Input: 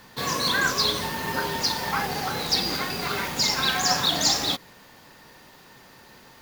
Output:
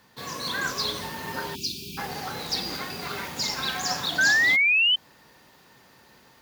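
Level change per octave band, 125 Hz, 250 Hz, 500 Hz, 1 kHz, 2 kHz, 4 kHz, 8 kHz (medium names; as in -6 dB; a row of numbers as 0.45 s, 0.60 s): -5.5 dB, -5.5 dB, -6.0 dB, -6.0 dB, +5.5 dB, -2.5 dB, -6.0 dB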